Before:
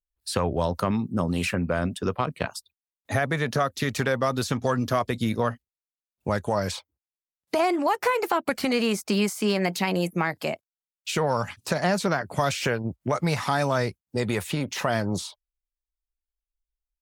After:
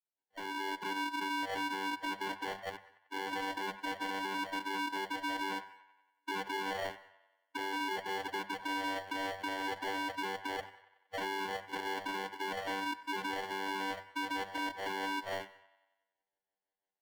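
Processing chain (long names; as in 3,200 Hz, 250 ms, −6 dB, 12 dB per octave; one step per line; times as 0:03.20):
every frequency bin delayed by itself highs late, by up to 168 ms
tilt shelving filter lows −6.5 dB, about 670 Hz
channel vocoder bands 16, square 291 Hz
decimation without filtering 35×
three-way crossover with the lows and the highs turned down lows −18 dB, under 530 Hz, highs −13 dB, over 3,900 Hz
reversed playback
downward compressor 16 to 1, threshold −45 dBFS, peak gain reduction 21.5 dB
reversed playback
delay with a band-pass on its return 93 ms, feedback 56%, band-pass 1,500 Hz, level −18.5 dB
brickwall limiter −43.5 dBFS, peak gain reduction 9 dB
mains-hum notches 50/100/150/200 Hz
on a send at −21 dB: convolution reverb, pre-delay 34 ms
on the sum: automatic gain control gain up to 8 dB
level +7 dB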